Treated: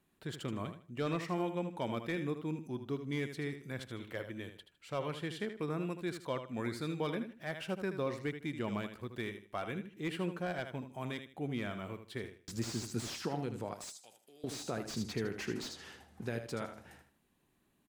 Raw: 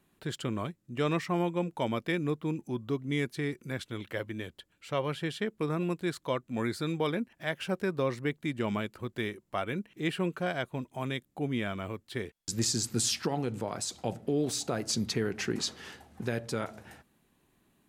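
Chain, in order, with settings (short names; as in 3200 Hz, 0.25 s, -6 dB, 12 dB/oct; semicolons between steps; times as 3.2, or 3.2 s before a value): 13.74–14.44 differentiator; feedback echo 78 ms, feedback 26%, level -9.5 dB; slew limiter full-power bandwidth 76 Hz; gain -6 dB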